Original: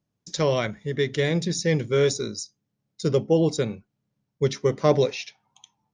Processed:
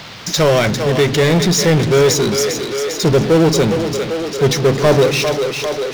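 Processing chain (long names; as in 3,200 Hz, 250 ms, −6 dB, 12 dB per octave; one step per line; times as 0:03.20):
echo with a time of its own for lows and highs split 320 Hz, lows 147 ms, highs 400 ms, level −12.5 dB
power curve on the samples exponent 0.5
noise in a band 390–4,700 Hz −38 dBFS
level +3 dB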